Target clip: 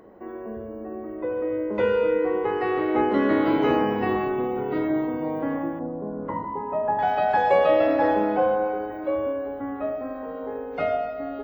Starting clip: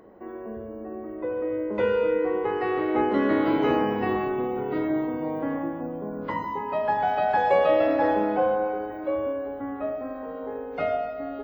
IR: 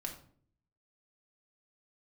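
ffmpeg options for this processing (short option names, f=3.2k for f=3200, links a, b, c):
-filter_complex "[0:a]asettb=1/sr,asplit=3[a][b][c];[a]atrim=end=5.794[d];[b]atrim=start=5.79:end=6.99,asetpts=PTS-STARTPTS,afade=t=in:d=0.004:c=qsin,afade=t=out:st=1.196:d=0.004:c=qsin,lowpass=1.1k[e];[c]atrim=start=6.986[f];[d][e]acrossfade=d=0.004:c1=hsin:c2=qsin[g];[g][f]acrossfade=d=0.004:c1=qsin:c2=hsin,volume=1.5dB"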